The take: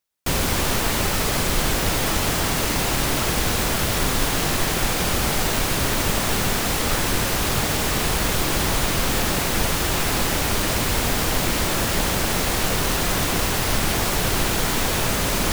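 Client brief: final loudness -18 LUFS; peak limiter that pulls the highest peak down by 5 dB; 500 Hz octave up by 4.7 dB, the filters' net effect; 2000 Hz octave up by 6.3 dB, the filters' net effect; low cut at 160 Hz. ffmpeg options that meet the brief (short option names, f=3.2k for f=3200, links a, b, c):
-af "highpass=160,equalizer=f=500:t=o:g=5.5,equalizer=f=2k:t=o:g=7.5,volume=2.5dB,alimiter=limit=-9.5dB:level=0:latency=1"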